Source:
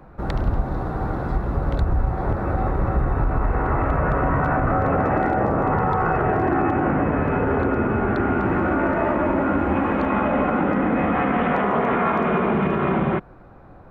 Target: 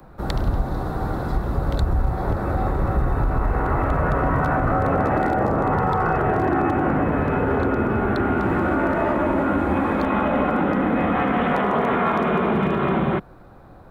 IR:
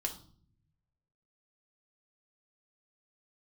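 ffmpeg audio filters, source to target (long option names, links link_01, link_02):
-filter_complex "[0:a]asettb=1/sr,asplit=3[link_01][link_02][link_03];[link_01]atrim=end=9.614[link_04];[link_02]atrim=start=9.61:end=10.04,asetpts=PTS-STARTPTS,afade=type=in:duration=0.004:curve=qsin,afade=type=out:start_time=0.426:duration=0.004:curve=qsin,bandreject=frequency=2900:width=11[link_05];[link_03]atrim=start=10.036[link_06];[link_04][link_05]acrossfade=duration=0.004:curve1=hsin:curve2=qsin[link_07];[link_07][link_06]acrossfade=duration=0.004:curve1=qsin:curve2=hsin,acrossover=split=120|420|1800[link_08][link_09][link_10][link_11];[link_11]aexciter=amount=2.5:drive=5.9:freq=3400[link_12];[link_08][link_09][link_10][link_12]amix=inputs=4:normalize=0"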